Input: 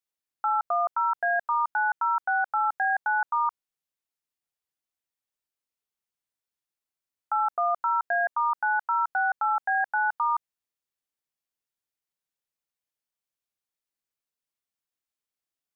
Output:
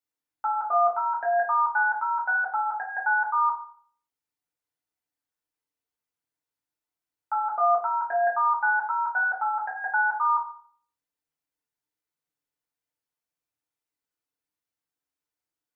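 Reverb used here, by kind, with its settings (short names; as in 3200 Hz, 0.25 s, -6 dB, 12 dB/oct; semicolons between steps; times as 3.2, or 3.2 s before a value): FDN reverb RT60 0.51 s, low-frequency decay 1.05×, high-frequency decay 0.35×, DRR -4.5 dB; gain -4.5 dB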